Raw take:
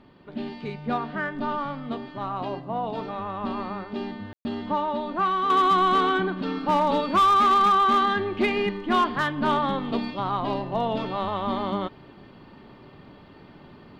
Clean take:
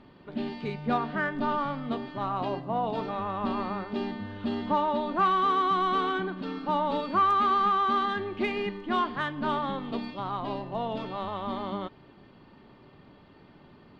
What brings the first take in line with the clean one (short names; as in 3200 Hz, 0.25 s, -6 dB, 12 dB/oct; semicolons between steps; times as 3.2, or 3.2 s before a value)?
clip repair -15 dBFS; room tone fill 4.33–4.45; gain correction -6 dB, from 5.5